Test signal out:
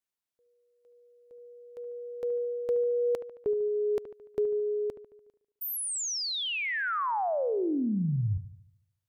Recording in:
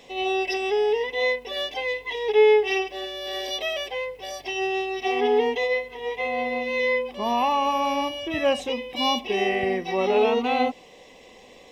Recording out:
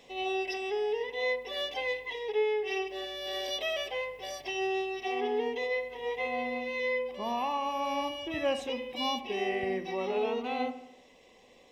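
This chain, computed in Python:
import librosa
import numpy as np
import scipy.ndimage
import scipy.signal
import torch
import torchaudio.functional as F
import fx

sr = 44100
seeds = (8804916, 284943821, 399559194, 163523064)

p1 = fx.rider(x, sr, range_db=4, speed_s=0.5)
p2 = p1 + fx.echo_wet_lowpass(p1, sr, ms=73, feedback_pct=53, hz=2300.0, wet_db=-12.5, dry=0)
y = p2 * librosa.db_to_amplitude(-8.5)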